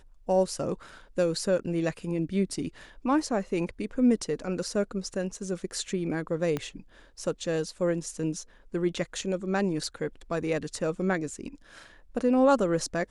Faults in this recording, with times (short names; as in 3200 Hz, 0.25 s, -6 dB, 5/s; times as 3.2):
6.57 pop -17 dBFS